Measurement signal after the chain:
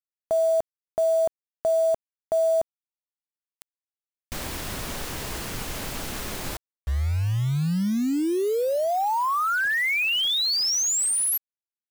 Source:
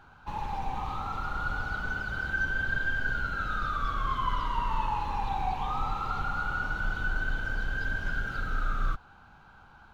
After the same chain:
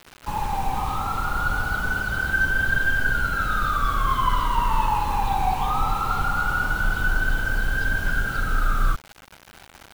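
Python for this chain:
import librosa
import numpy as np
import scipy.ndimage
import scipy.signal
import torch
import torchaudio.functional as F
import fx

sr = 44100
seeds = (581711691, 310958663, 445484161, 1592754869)

y = fx.quant_dither(x, sr, seeds[0], bits=8, dither='none')
y = y * 10.0 ** (8.0 / 20.0)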